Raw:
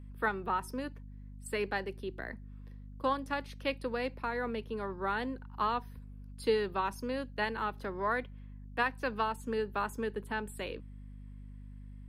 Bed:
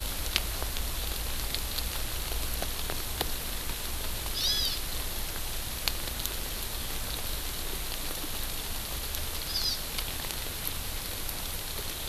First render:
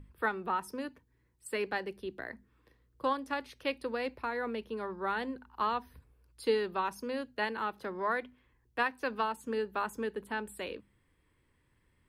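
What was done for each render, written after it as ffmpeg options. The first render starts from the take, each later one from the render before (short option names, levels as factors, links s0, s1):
-af "bandreject=f=50:t=h:w=6,bandreject=f=100:t=h:w=6,bandreject=f=150:t=h:w=6,bandreject=f=200:t=h:w=6,bandreject=f=250:t=h:w=6"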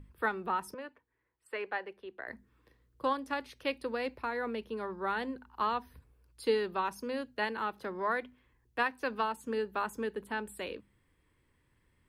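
-filter_complex "[0:a]asettb=1/sr,asplit=3[s0][s1][s2];[s0]atrim=end=0.744[s3];[s1]atrim=start=0.74:end=2.28,asetpts=PTS-STARTPTS,afade=t=in:d=0.004:c=qsin,afade=t=out:st=1.536:d=0.004:c=qsin,acrossover=split=420 3000:gain=0.158 1 0.126[s4][s5][s6];[s4][s5][s6]amix=inputs=3:normalize=0[s7];[s2]atrim=start=2.276[s8];[s3][s7]acrossfade=d=0.004:c1=hsin:c2=qsin[s9];[s9][s8]acrossfade=d=0.004:c1=qsin:c2=hsin"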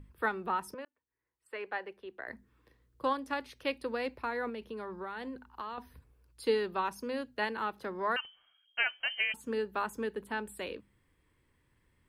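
-filter_complex "[0:a]asettb=1/sr,asplit=3[s0][s1][s2];[s0]atrim=end=4.494[s3];[s1]atrim=start=4.49:end=5.78,asetpts=PTS-STARTPTS,afade=t=in:d=0.004:c=qsin,afade=t=out:st=1.286:d=0.004:c=qsin,acompressor=threshold=0.0158:ratio=6:attack=3.2:release=140:knee=1:detection=peak[s4];[s2]atrim=start=5.776[s5];[s3][s4]acrossfade=d=0.004:c1=hsin:c2=qsin[s6];[s6][s5]acrossfade=d=0.004:c1=qsin:c2=hsin,asettb=1/sr,asplit=3[s7][s8][s9];[s7]atrim=end=8.164[s10];[s8]atrim=start=8.16:end=9.34,asetpts=PTS-STARTPTS,afade=t=in:d=0.004:c=qsin,afade=t=out:st=1.176:d=0.004:c=qsin,lowpass=f=2800:t=q:w=0.5098,lowpass=f=2800:t=q:w=0.6013,lowpass=f=2800:t=q:w=0.9,lowpass=f=2800:t=q:w=2.563,afreqshift=-3300[s11];[s9]atrim=start=9.336[s12];[s10][s11]acrossfade=d=0.004:c1=hsin:c2=qsin[s13];[s13][s12]acrossfade=d=0.004:c1=qsin:c2=hsin,asplit=2[s14][s15];[s14]atrim=end=0.85,asetpts=PTS-STARTPTS,afade=t=out:st=0.846:d=0.004:c=hsin[s16];[s15]atrim=start=0.85,asetpts=PTS-STARTPTS,afade=t=in:d=1.02[s17];[s16][s17]concat=n=2:v=0:a=1"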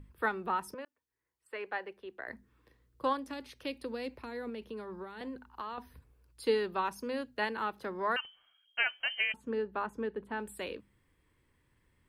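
-filter_complex "[0:a]asettb=1/sr,asplit=3[s0][s1][s2];[s0]atrim=end=3.284[s3];[s1]atrim=start=3.28:end=5.21,asetpts=PTS-STARTPTS,afade=t=in:d=0.004:c=qsin,afade=t=out:st=1.926:d=0.004:c=qsin,acrossover=split=480|3000[s4][s5][s6];[s5]acompressor=threshold=0.00501:ratio=6:attack=3.2:release=140:knee=2.83:detection=peak[s7];[s4][s7][s6]amix=inputs=3:normalize=0[s8];[s2]atrim=start=5.206[s9];[s3][s8]acrossfade=d=0.004:c1=hsin:c2=qsin[s10];[s10][s9]acrossfade=d=0.004:c1=qsin:c2=hsin,asettb=1/sr,asplit=3[s11][s12][s13];[s11]atrim=end=9.324[s14];[s12]atrim=start=9.32:end=10.4,asetpts=PTS-STARTPTS,afade=t=in:d=0.004:c=qsin,afade=t=out:st=1.076:d=0.004:c=qsin,lowpass=f=1500:p=1[s15];[s13]atrim=start=10.396[s16];[s14][s15]acrossfade=d=0.004:c1=hsin:c2=qsin[s17];[s17][s16]acrossfade=d=0.004:c1=qsin:c2=hsin"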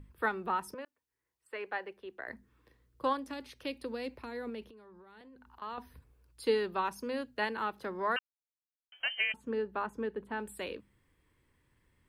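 -filter_complex "[0:a]asettb=1/sr,asplit=3[s0][s1][s2];[s0]atrim=end=4.684[s3];[s1]atrim=start=4.68:end=5.62,asetpts=PTS-STARTPTS,afade=t=in:d=0.004:c=qsin,afade=t=out:st=0.936:d=0.004:c=qsin,acompressor=threshold=0.00251:ratio=10:attack=3.2:release=140:knee=1:detection=peak[s4];[s2]atrim=start=5.616[s5];[s3][s4]acrossfade=d=0.004:c1=hsin:c2=qsin[s6];[s6][s5]acrossfade=d=0.004:c1=qsin:c2=hsin,asplit=3[s7][s8][s9];[s7]atrim=end=8.19,asetpts=PTS-STARTPTS,afade=t=out:st=8.186:d=0.004:c=hsin[s10];[s8]atrim=start=8.19:end=8.92,asetpts=PTS-STARTPTS,volume=0[s11];[s9]atrim=start=8.92,asetpts=PTS-STARTPTS,afade=t=in:d=0.004:c=hsin[s12];[s10][s11][s12]concat=n=3:v=0:a=1"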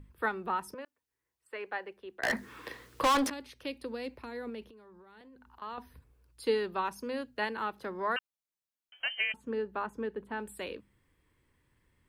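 -filter_complex "[0:a]asettb=1/sr,asplit=3[s0][s1][s2];[s0]atrim=end=2.234[s3];[s1]atrim=start=2.23:end=3.3,asetpts=PTS-STARTPTS,afade=t=in:d=0.004:c=qsin,afade=t=out:st=1.066:d=0.004:c=qsin,asplit=2[s4][s5];[s5]highpass=f=720:p=1,volume=44.7,asoftclip=type=tanh:threshold=0.112[s6];[s4][s6]amix=inputs=2:normalize=0,lowpass=f=6900:p=1,volume=0.501[s7];[s2]atrim=start=3.296[s8];[s3][s7]acrossfade=d=0.004:c1=hsin:c2=qsin[s9];[s9][s8]acrossfade=d=0.004:c1=qsin:c2=hsin"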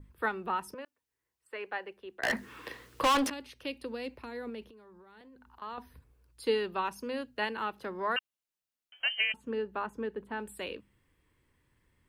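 -af "adynamicequalizer=threshold=0.00224:dfrequency=2800:dqfactor=5.8:tfrequency=2800:tqfactor=5.8:attack=5:release=100:ratio=0.375:range=3:mode=boostabove:tftype=bell"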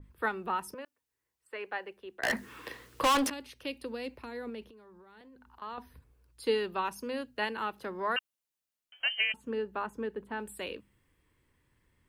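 -af "adynamicequalizer=threshold=0.00398:dfrequency=6100:dqfactor=0.7:tfrequency=6100:tqfactor=0.7:attack=5:release=100:ratio=0.375:range=2:mode=boostabove:tftype=highshelf"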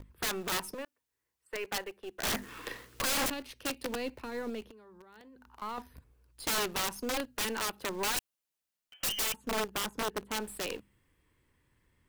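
-filter_complex "[0:a]asplit=2[s0][s1];[s1]acrusher=bits=5:dc=4:mix=0:aa=0.000001,volume=0.596[s2];[s0][s2]amix=inputs=2:normalize=0,aeval=exprs='(mod(20*val(0)+1,2)-1)/20':c=same"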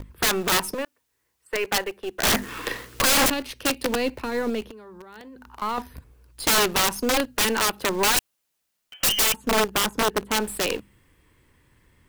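-af "volume=3.76"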